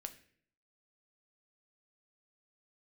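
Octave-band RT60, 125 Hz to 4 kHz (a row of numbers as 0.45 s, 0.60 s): 0.75 s, 0.75 s, 0.65 s, 0.45 s, 0.60 s, 0.50 s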